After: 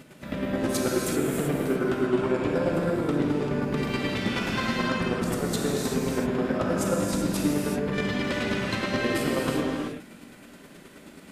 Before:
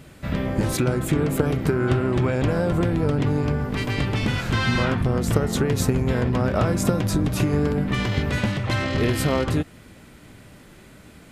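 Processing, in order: resonant low shelf 150 Hz -11 dB, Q 1.5; peak limiter -17 dBFS, peak gain reduction 11.5 dB; square tremolo 9.4 Hz, depth 65%, duty 25%; gated-style reverb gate 410 ms flat, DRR -3 dB

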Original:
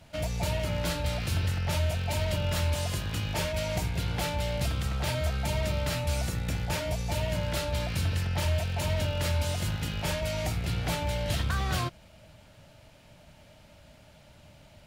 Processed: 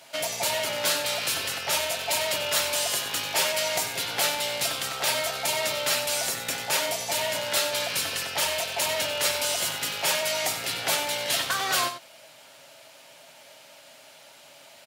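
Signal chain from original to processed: high-pass 490 Hz 12 dB/octave; treble shelf 4.1 kHz +7.5 dB; comb 7.4 ms, depth 35%; delay 93 ms -10.5 dB; trim +6 dB

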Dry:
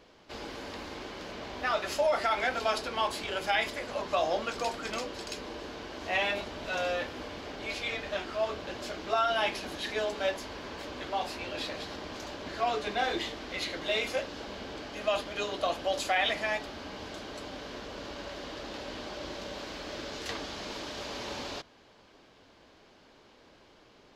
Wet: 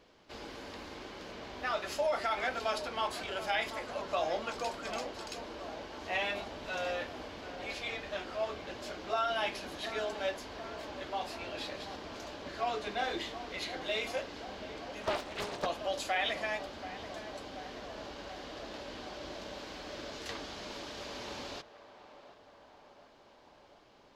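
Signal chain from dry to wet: on a send: band-passed feedback delay 732 ms, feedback 73%, band-pass 800 Hz, level -11.5 dB; 15.03–15.66 s: on the sum: loudspeaker Doppler distortion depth 0.79 ms; trim -4.5 dB

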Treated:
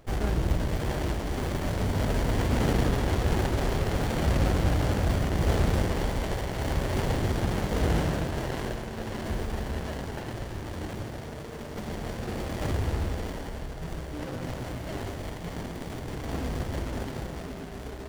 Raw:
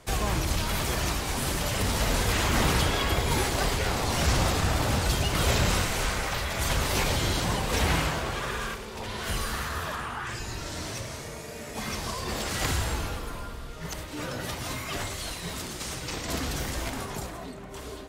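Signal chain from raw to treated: two-band feedback delay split 790 Hz, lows 136 ms, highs 639 ms, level -4.5 dB; sliding maximum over 33 samples

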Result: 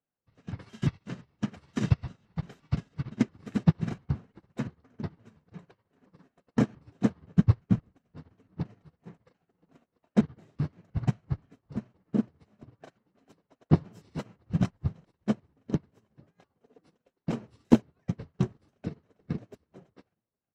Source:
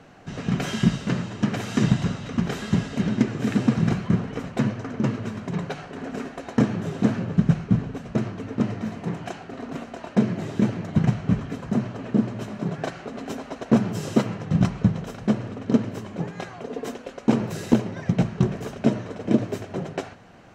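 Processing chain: pitch shift switched off and on -6 st, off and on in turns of 173 ms; feedback delay 819 ms, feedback 53%, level -22 dB; upward expansion 2.5:1, over -42 dBFS

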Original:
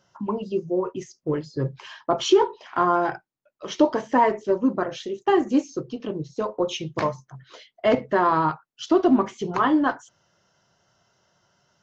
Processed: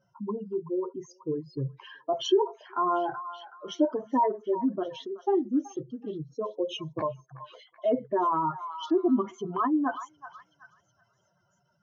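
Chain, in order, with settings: spectral contrast enhancement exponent 2.2; repeats whose band climbs or falls 376 ms, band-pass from 1.2 kHz, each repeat 0.7 oct, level -10.5 dB; trim -5.5 dB

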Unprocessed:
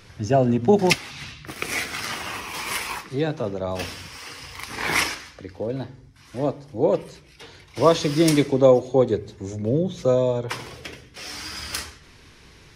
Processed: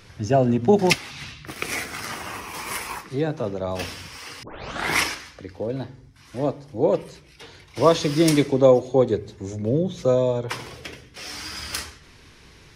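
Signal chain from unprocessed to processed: 1.75–3.42 s: dynamic bell 3.4 kHz, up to -6 dB, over -41 dBFS, Q 0.88; 4.43 s: tape start 0.48 s

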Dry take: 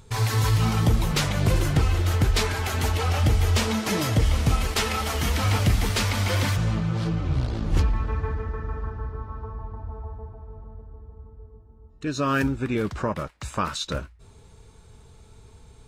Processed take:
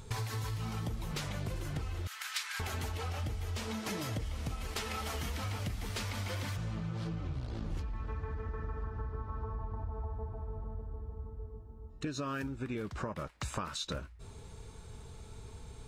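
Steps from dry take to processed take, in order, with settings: 2.07–2.60 s: high-pass 1.3 kHz 24 dB/octave; compression 16:1, threshold -35 dBFS, peak gain reduction 20 dB; trim +1 dB

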